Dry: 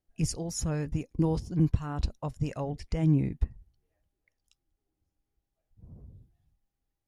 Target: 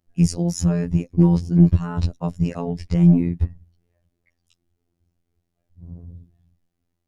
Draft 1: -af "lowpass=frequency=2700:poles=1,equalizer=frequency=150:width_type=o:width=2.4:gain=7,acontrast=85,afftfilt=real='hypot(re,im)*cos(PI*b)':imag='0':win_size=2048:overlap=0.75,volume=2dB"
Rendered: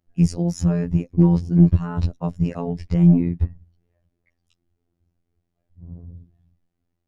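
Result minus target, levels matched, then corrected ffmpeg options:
8,000 Hz band −6.5 dB
-af "lowpass=frequency=8400:poles=1,equalizer=frequency=150:width_type=o:width=2.4:gain=7,acontrast=85,afftfilt=real='hypot(re,im)*cos(PI*b)':imag='0':win_size=2048:overlap=0.75,volume=2dB"

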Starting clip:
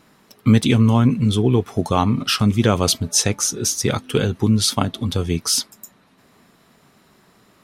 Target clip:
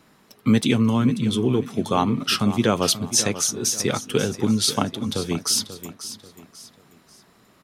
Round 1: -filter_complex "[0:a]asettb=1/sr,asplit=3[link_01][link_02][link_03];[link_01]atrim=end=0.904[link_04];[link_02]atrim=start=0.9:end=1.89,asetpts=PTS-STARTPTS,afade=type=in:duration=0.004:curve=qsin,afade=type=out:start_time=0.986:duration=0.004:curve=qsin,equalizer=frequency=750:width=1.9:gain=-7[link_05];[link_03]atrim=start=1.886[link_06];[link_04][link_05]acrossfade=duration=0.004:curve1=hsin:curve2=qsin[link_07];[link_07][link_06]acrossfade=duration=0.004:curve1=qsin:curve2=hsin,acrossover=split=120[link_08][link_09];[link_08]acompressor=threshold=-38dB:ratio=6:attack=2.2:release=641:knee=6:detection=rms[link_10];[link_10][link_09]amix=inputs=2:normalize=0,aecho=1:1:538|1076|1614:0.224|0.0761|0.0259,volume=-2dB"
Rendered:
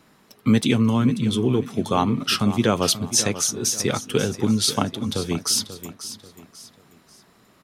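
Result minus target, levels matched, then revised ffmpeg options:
downward compressor: peak gain reduction −8.5 dB
-filter_complex "[0:a]asettb=1/sr,asplit=3[link_01][link_02][link_03];[link_01]atrim=end=0.904[link_04];[link_02]atrim=start=0.9:end=1.89,asetpts=PTS-STARTPTS,afade=type=in:duration=0.004:curve=qsin,afade=type=out:start_time=0.986:duration=0.004:curve=qsin,equalizer=frequency=750:width=1.9:gain=-7[link_05];[link_03]atrim=start=1.886[link_06];[link_04][link_05]acrossfade=duration=0.004:curve1=hsin:curve2=qsin[link_07];[link_07][link_06]acrossfade=duration=0.004:curve1=qsin:curve2=hsin,acrossover=split=120[link_08][link_09];[link_08]acompressor=threshold=-48dB:ratio=6:attack=2.2:release=641:knee=6:detection=rms[link_10];[link_10][link_09]amix=inputs=2:normalize=0,aecho=1:1:538|1076|1614:0.224|0.0761|0.0259,volume=-2dB"

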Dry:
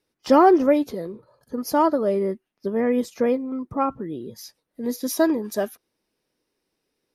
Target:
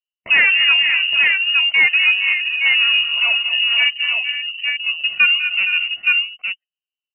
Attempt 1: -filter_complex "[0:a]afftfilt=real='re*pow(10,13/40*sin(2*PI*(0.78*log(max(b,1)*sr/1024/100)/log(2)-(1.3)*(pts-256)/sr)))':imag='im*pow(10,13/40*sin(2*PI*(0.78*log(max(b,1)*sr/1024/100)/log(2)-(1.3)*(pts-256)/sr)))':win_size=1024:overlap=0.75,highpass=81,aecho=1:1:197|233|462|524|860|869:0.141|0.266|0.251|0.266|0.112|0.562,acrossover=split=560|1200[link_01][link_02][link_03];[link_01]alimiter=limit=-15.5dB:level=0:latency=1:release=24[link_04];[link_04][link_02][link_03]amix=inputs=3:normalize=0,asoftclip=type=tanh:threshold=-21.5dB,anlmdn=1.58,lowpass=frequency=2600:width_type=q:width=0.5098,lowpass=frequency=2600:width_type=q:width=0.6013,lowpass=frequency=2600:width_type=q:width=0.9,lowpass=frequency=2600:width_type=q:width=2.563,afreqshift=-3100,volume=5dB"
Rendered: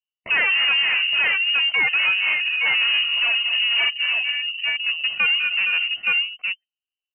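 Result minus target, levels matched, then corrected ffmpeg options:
soft clipping: distortion +9 dB
-filter_complex "[0:a]afftfilt=real='re*pow(10,13/40*sin(2*PI*(0.78*log(max(b,1)*sr/1024/100)/log(2)-(1.3)*(pts-256)/sr)))':imag='im*pow(10,13/40*sin(2*PI*(0.78*log(max(b,1)*sr/1024/100)/log(2)-(1.3)*(pts-256)/sr)))':win_size=1024:overlap=0.75,highpass=81,aecho=1:1:197|233|462|524|860|869:0.141|0.266|0.251|0.266|0.112|0.562,acrossover=split=560|1200[link_01][link_02][link_03];[link_01]alimiter=limit=-15.5dB:level=0:latency=1:release=24[link_04];[link_04][link_02][link_03]amix=inputs=3:normalize=0,asoftclip=type=tanh:threshold=-11.5dB,anlmdn=1.58,lowpass=frequency=2600:width_type=q:width=0.5098,lowpass=frequency=2600:width_type=q:width=0.6013,lowpass=frequency=2600:width_type=q:width=0.9,lowpass=frequency=2600:width_type=q:width=2.563,afreqshift=-3100,volume=5dB"

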